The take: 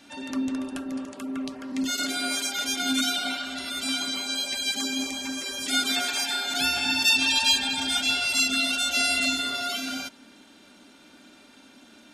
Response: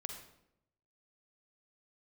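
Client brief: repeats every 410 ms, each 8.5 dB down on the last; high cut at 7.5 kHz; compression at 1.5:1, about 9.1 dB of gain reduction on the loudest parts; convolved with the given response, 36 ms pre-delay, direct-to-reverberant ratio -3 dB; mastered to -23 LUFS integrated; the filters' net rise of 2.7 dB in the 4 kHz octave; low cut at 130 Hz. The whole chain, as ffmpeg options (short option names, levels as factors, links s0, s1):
-filter_complex "[0:a]highpass=130,lowpass=7500,equalizer=f=4000:t=o:g=3.5,acompressor=threshold=0.00891:ratio=1.5,aecho=1:1:410|820|1230|1640:0.376|0.143|0.0543|0.0206,asplit=2[s0][s1];[1:a]atrim=start_sample=2205,adelay=36[s2];[s1][s2]afir=irnorm=-1:irlink=0,volume=1.78[s3];[s0][s3]amix=inputs=2:normalize=0,volume=1.19"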